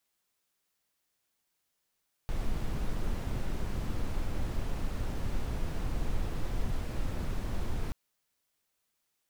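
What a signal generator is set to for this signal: noise brown, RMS -30.5 dBFS 5.63 s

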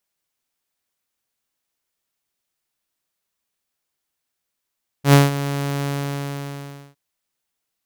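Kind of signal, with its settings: ADSR saw 141 Hz, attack 91 ms, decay 0.172 s, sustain -14.5 dB, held 0.83 s, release 1.08 s -4.5 dBFS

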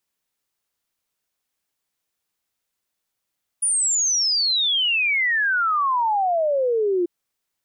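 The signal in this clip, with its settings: log sweep 9800 Hz -> 340 Hz 3.44 s -17.5 dBFS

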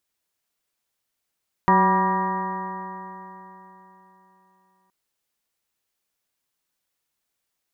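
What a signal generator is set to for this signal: stretched partials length 3.22 s, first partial 186 Hz, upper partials -4.5/-10/-5.5/5.5/-2/-20/-14/-7 dB, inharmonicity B 0.0031, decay 3.70 s, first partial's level -20 dB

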